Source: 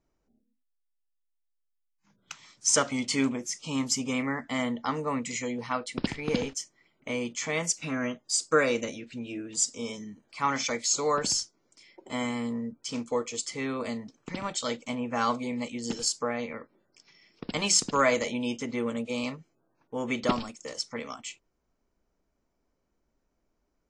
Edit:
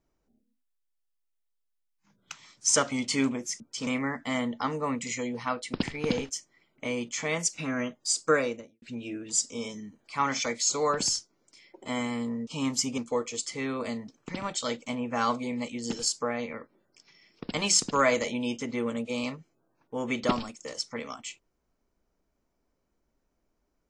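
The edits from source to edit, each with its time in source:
0:03.60–0:04.11: swap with 0:12.71–0:12.98
0:08.50–0:09.06: fade out and dull

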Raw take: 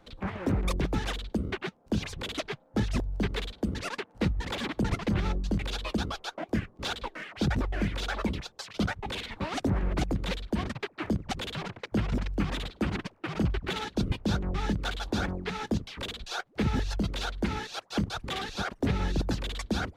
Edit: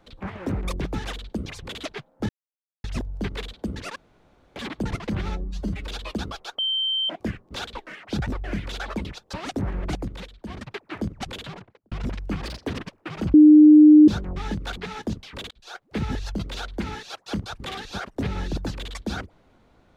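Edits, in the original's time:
0:01.46–0:02.00: remove
0:02.83: splice in silence 0.55 s
0:03.95–0:04.55: fill with room tone
0:05.28–0:05.67: time-stretch 1.5×
0:06.38: insert tone 3,120 Hz −21.5 dBFS 0.51 s
0:08.62–0:09.42: remove
0:10.05–0:10.82: duck −10 dB, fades 0.33 s
0:11.45–0:12.00: fade out and dull
0:12.54–0:12.97: play speed 129%
0:13.52–0:14.26: beep over 303 Hz −7 dBFS
0:14.95–0:15.41: remove
0:16.15–0:16.55: fade in

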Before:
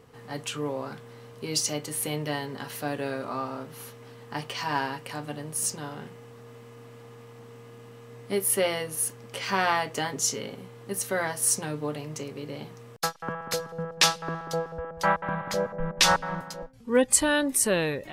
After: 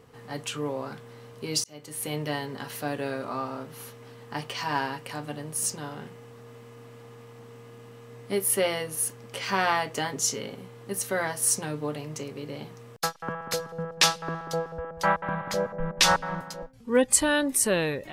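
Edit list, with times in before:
0:01.64–0:02.18: fade in

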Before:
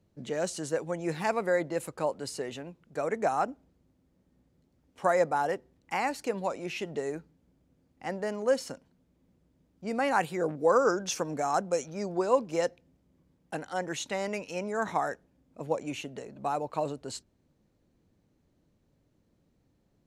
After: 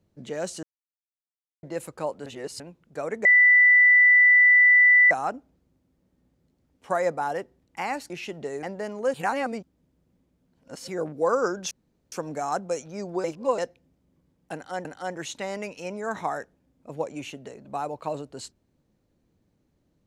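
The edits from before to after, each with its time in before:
0:00.63–0:01.63: silence
0:02.26–0:02.60: reverse
0:03.25: insert tone 1,980 Hz −12.5 dBFS 1.86 s
0:06.24–0:06.63: remove
0:07.16–0:08.06: remove
0:08.57–0:10.31: reverse
0:11.14: splice in room tone 0.41 s
0:12.26–0:12.60: reverse
0:13.56–0:13.87: repeat, 2 plays

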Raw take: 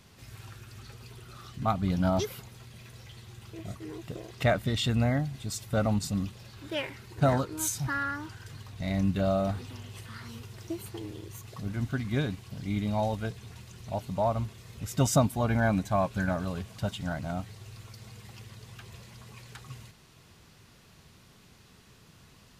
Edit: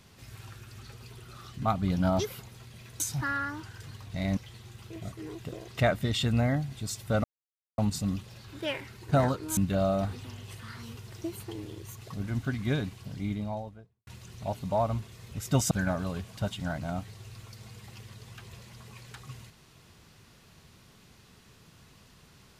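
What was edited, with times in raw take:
0:05.87: splice in silence 0.54 s
0:07.66–0:09.03: move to 0:03.00
0:12.43–0:13.53: fade out and dull
0:15.17–0:16.12: remove

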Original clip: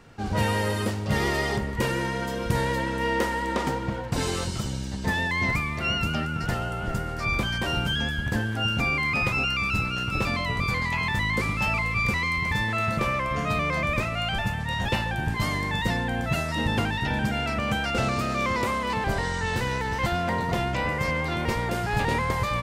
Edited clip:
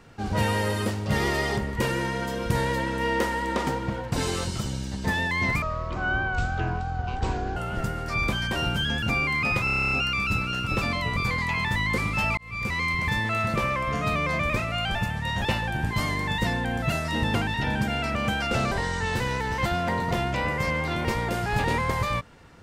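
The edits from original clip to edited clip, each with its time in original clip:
0:05.62–0:06.67: play speed 54%
0:08.13–0:08.73: remove
0:09.35: stutter 0.03 s, 10 plays
0:11.81–0:12.27: fade in
0:18.15–0:19.12: remove

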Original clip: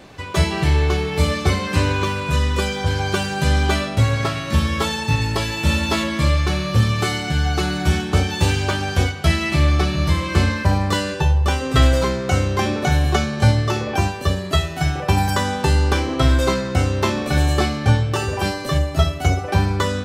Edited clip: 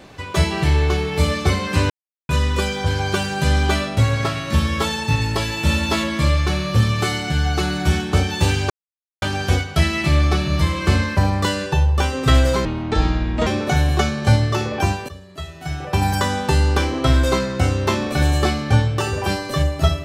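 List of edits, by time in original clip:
0:01.90–0:02.29: silence
0:08.70: splice in silence 0.52 s
0:12.13–0:12.62: play speed 60%
0:14.24–0:15.24: fade in quadratic, from −18.5 dB

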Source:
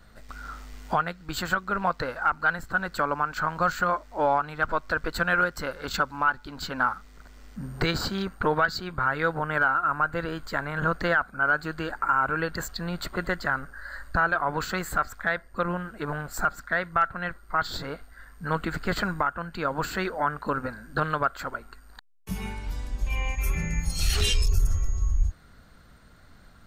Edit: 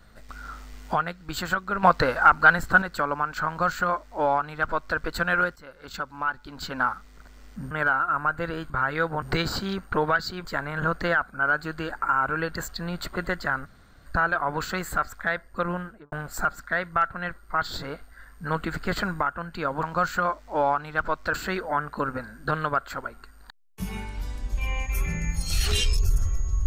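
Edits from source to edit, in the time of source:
0:01.83–0:02.82: clip gain +8 dB
0:03.47–0:04.98: duplicate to 0:19.83
0:05.56–0:06.74: fade in, from −17.5 dB
0:07.71–0:08.94: swap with 0:09.46–0:10.45
0:13.66–0:14.06: fill with room tone
0:15.79–0:16.12: fade out and dull

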